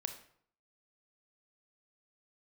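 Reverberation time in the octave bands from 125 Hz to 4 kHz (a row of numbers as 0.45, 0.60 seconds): 0.70, 0.65, 0.60, 0.60, 0.50, 0.45 seconds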